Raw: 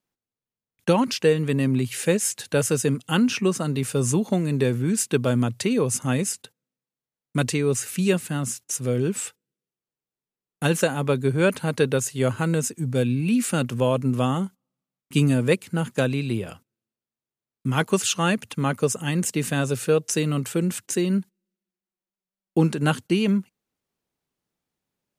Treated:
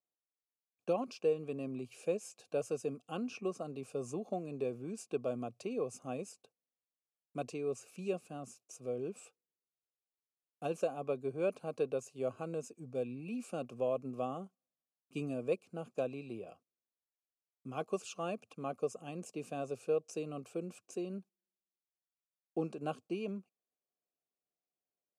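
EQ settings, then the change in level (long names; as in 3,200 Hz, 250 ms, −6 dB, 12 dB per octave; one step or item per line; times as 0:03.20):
formant filter a
flat-topped bell 1,600 Hz −12.5 dB 2.8 octaves
+4.5 dB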